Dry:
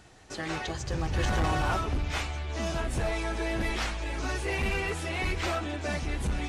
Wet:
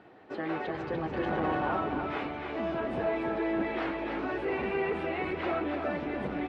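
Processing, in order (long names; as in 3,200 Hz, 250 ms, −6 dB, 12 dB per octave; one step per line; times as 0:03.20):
Chebyshev high-pass filter 320 Hz, order 2
spectral tilt −1.5 dB per octave
in parallel at +1 dB: brickwall limiter −29.5 dBFS, peak gain reduction 11 dB
on the sum: high-frequency loss of the air 450 metres
single-tap delay 293 ms −5.5 dB
level −2 dB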